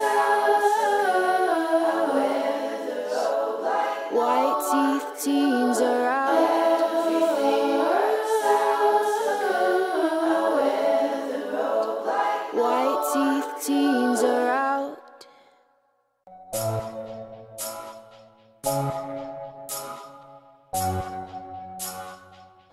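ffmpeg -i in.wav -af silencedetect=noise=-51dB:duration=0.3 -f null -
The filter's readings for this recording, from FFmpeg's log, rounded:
silence_start: 15.61
silence_end: 16.27 | silence_duration: 0.66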